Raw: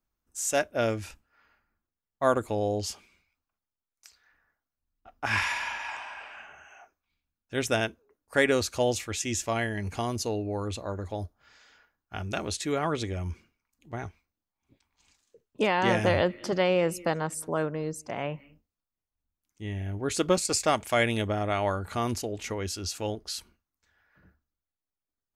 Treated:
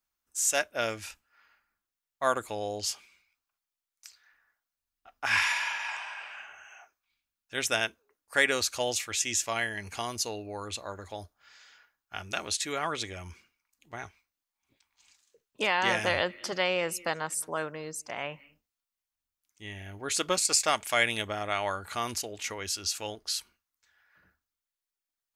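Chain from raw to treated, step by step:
tilt shelving filter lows −8 dB, about 670 Hz
level −4 dB

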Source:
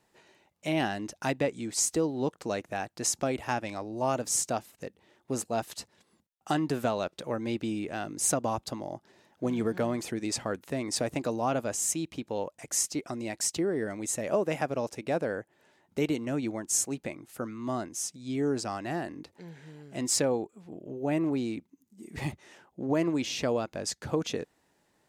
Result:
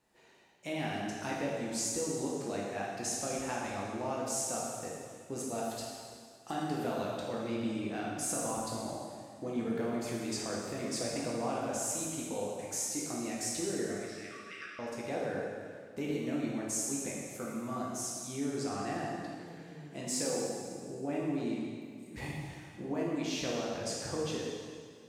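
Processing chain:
downward compressor 2 to 1, threshold −32 dBFS, peak gain reduction 6 dB
0:13.93–0:14.79: linear-phase brick-wall band-pass 1,100–5,900 Hz
dense smooth reverb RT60 2 s, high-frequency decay 0.95×, DRR −5 dB
level −7 dB

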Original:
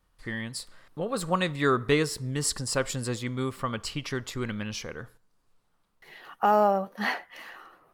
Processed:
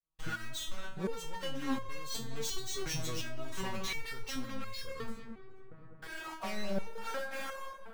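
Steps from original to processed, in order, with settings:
running median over 3 samples
downward expander −58 dBFS
low-shelf EQ 240 Hz +3.5 dB
leveller curve on the samples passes 3
brickwall limiter −34 dBFS, peak gain reduction 24 dB
leveller curve on the samples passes 3
formants moved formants −4 semitones
feedback echo with a low-pass in the loop 207 ms, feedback 79%, low-pass 2,300 Hz, level −13 dB
step-sequenced resonator 2.8 Hz 160–540 Hz
level +14 dB

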